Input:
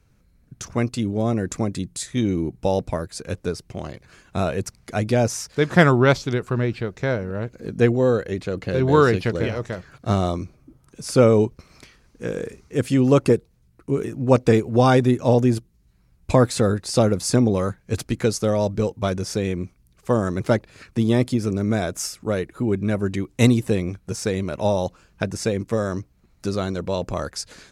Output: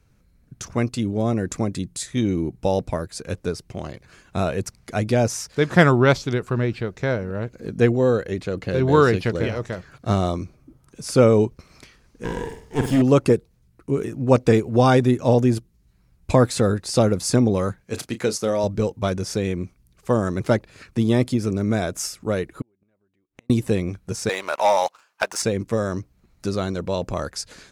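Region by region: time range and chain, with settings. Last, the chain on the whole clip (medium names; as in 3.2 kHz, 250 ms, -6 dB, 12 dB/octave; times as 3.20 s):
12.24–13.02 s: comb filter that takes the minimum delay 0.59 ms + flutter echo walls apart 8.3 m, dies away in 0.46 s
17.84–18.64 s: high-pass 270 Hz 6 dB/octave + doubling 32 ms -12.5 dB
22.61–23.50 s: tone controls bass -7 dB, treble -12 dB + compression 3:1, threshold -26 dBFS + inverted gate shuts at -24 dBFS, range -39 dB
24.29–25.42 s: resonant high-pass 900 Hz, resonance Q 1.7 + waveshaping leveller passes 2
whole clip: none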